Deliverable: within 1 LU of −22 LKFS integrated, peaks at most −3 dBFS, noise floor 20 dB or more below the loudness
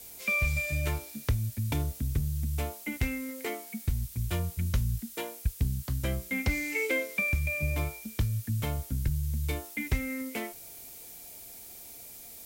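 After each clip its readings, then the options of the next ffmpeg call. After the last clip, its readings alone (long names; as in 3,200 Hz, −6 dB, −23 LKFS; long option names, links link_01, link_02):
background noise floor −47 dBFS; target noise floor −52 dBFS; integrated loudness −31.5 LKFS; sample peak −17.5 dBFS; target loudness −22.0 LKFS
→ -af "afftdn=noise_reduction=6:noise_floor=-47"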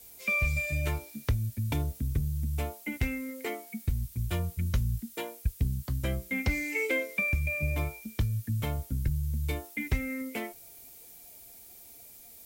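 background noise floor −51 dBFS; target noise floor −52 dBFS
→ -af "afftdn=noise_reduction=6:noise_floor=-51"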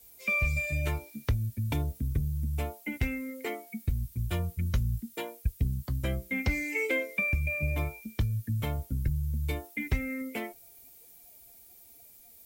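background noise floor −55 dBFS; integrated loudness −32.0 LKFS; sample peak −17.5 dBFS; target loudness −22.0 LKFS
→ -af "volume=10dB"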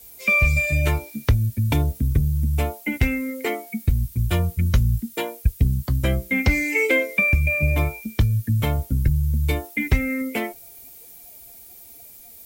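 integrated loudness −22.0 LKFS; sample peak −7.5 dBFS; background noise floor −45 dBFS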